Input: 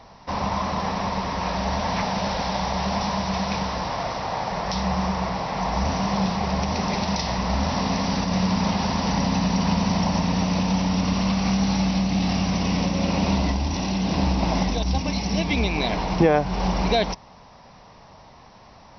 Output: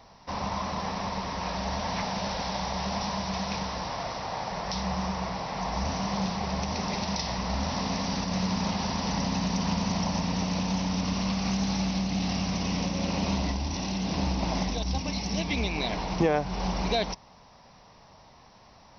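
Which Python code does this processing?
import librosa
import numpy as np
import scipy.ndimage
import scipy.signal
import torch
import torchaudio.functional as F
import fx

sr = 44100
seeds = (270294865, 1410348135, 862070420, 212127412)

y = fx.high_shelf(x, sr, hz=5300.0, db=8.0)
y = fx.doppler_dist(y, sr, depth_ms=0.15)
y = y * librosa.db_to_amplitude(-6.5)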